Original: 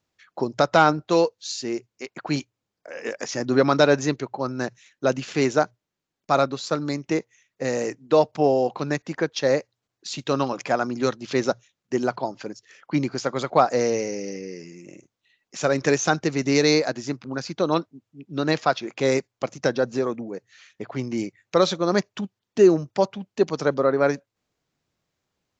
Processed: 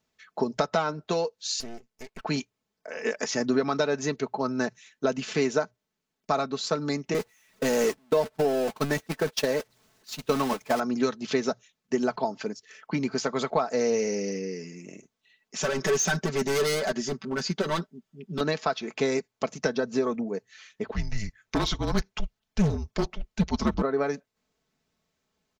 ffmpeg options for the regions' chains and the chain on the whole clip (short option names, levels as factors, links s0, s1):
-filter_complex "[0:a]asettb=1/sr,asplit=3[s0][s1][s2];[s0]atrim=end=1.604[s3];[s1]atrim=start=1.6:end=2.25,asetpts=PTS-STARTPTS,afade=t=in:d=0.004:c=qsin,afade=t=out:st=0.646:d=0.004:c=qsin,highpass=f=43:w=0.5412,highpass=f=43:w=1.3066,acompressor=threshold=0.0224:ratio=6:attack=3.2:release=140:knee=1:detection=peak,aeval=exprs='max(val(0),0)':c=same[s4];[s2]atrim=start=2.246[s5];[s3][s4]acrossfade=d=0.004:c1=hsin:c2=qsin[s6];[s6][s5]acrossfade=d=0.004:c1=qsin:c2=hsin,asettb=1/sr,asplit=3[s7][s8][s9];[s7]atrim=end=7.144[s10];[s8]atrim=start=7.14:end=10.8,asetpts=PTS-STARTPTS,afade=t=in:d=0.004:c=qsin,afade=t=out:st=3.656:d=0.004:c=qsin,aeval=exprs='val(0)+0.5*0.0708*sgn(val(0))':c=same,agate=range=0.0178:threshold=0.0631:ratio=16:release=100:detection=peak[s11];[s9]atrim=start=10.796[s12];[s10][s11]acrossfade=d=0.004:c1=hsin:c2=qsin[s13];[s13][s12]acrossfade=d=0.004:c1=qsin:c2=hsin,asettb=1/sr,asplit=3[s14][s15][s16];[s14]atrim=end=15.624[s17];[s15]atrim=start=15.62:end=18.41,asetpts=PTS-STARTPTS,afade=t=in:d=0.004:c=qsin,afade=t=out:st=2.786:d=0.004:c=qsin,volume=15,asoftclip=hard,volume=0.0668,aecho=1:1:5.2:0.75,atrim=end_sample=123039[s18];[s16]atrim=start=18.406[s19];[s17][s18]acrossfade=d=0.004:c1=hsin:c2=qsin[s20];[s20][s19]acrossfade=d=0.004:c1=qsin:c2=hsin,asettb=1/sr,asplit=3[s21][s22][s23];[s21]atrim=end=20.864[s24];[s22]atrim=start=20.86:end=23.82,asetpts=PTS-STARTPTS,afade=t=in:d=0.004:c=qsin,afade=t=out:st=2.956:d=0.004:c=qsin,afreqshift=-220,asoftclip=type=hard:threshold=0.15[s25];[s23]atrim=start=23.816[s26];[s24][s25]acrossfade=d=0.004:c1=hsin:c2=qsin[s27];[s27][s26]acrossfade=d=0.004:c1=qsin:c2=hsin,acompressor=threshold=0.0794:ratio=10,aecho=1:1:4.6:0.58"